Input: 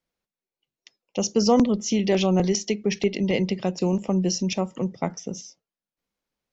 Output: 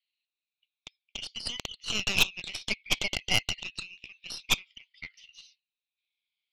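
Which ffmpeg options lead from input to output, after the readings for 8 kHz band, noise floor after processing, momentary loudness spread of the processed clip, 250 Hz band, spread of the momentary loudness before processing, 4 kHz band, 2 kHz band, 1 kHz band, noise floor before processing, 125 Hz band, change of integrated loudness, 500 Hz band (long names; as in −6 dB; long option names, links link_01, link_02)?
can't be measured, below −85 dBFS, 19 LU, −23.5 dB, 11 LU, +3.5 dB, +5.0 dB, −12.0 dB, below −85 dBFS, −16.5 dB, −6.0 dB, −22.0 dB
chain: -af "afftfilt=real='re*pow(10,9/40*sin(2*PI*(1.7*log(max(b,1)*sr/1024/100)/log(2)-(-0.57)*(pts-256)/sr)))':imag='im*pow(10,9/40*sin(2*PI*(1.7*log(max(b,1)*sr/1024/100)/log(2)-(-0.57)*(pts-256)/sr)))':win_size=1024:overlap=0.75,asuperpass=centerf=3100:order=8:qfactor=1.5,aeval=exprs='0.141*(cos(1*acos(clip(val(0)/0.141,-1,1)))-cos(1*PI/2))+0.0158*(cos(3*acos(clip(val(0)/0.141,-1,1)))-cos(3*PI/2))+0.0224*(cos(6*acos(clip(val(0)/0.141,-1,1)))-cos(6*PI/2))':channel_layout=same,volume=9dB"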